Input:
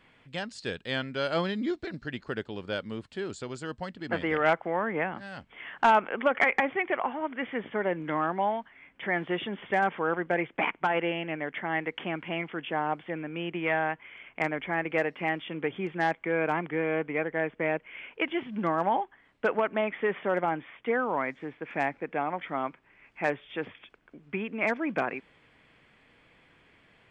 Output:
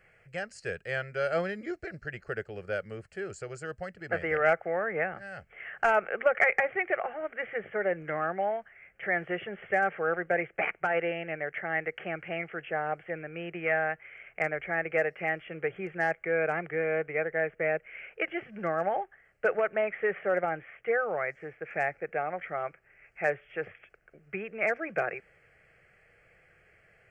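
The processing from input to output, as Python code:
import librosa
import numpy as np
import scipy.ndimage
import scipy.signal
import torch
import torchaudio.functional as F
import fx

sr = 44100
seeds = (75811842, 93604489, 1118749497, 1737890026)

y = fx.fixed_phaser(x, sr, hz=980.0, stages=6)
y = y * 10.0 ** (1.5 / 20.0)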